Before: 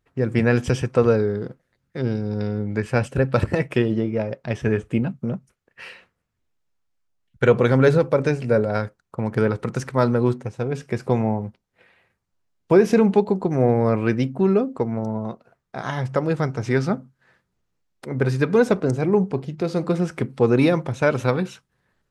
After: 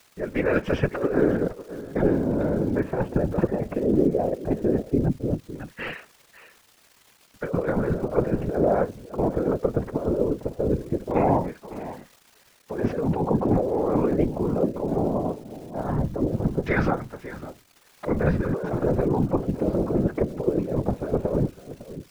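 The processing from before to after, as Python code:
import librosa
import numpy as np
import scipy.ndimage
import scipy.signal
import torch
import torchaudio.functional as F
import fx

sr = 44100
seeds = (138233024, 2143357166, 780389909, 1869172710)

y = fx.fade_in_head(x, sr, length_s=0.93)
y = scipy.signal.sosfilt(scipy.signal.butter(2, 170.0, 'highpass', fs=sr, output='sos'), y)
y = fx.low_shelf(y, sr, hz=500.0, db=-5.0)
y = y + 0.68 * np.pad(y, (int(6.2 * sr / 1000.0), 0))[:len(y)]
y = fx.over_compress(y, sr, threshold_db=-26.0, ratio=-1.0)
y = y + 10.0 ** (-14.5 / 20.0) * np.pad(y, (int(556 * sr / 1000.0), 0))[:len(y)]
y = fx.filter_lfo_lowpass(y, sr, shape='saw_down', hz=0.18, low_hz=370.0, high_hz=2100.0, q=0.77)
y = fx.dmg_crackle(y, sr, seeds[0], per_s=490.0, level_db=-45.0)
y = fx.whisperise(y, sr, seeds[1])
y = y * librosa.db_to_amplitude(4.0)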